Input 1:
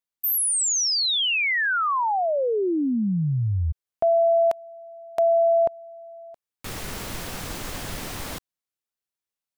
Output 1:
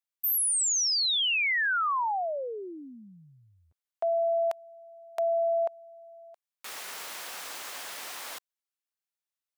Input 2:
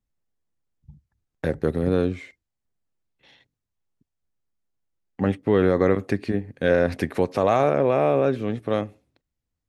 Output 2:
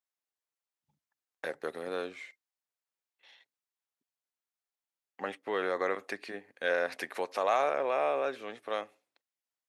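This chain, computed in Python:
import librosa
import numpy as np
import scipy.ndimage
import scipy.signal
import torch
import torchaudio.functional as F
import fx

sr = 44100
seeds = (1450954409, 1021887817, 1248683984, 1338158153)

y = scipy.signal.sosfilt(scipy.signal.butter(2, 750.0, 'highpass', fs=sr, output='sos'), x)
y = y * 10.0 ** (-3.5 / 20.0)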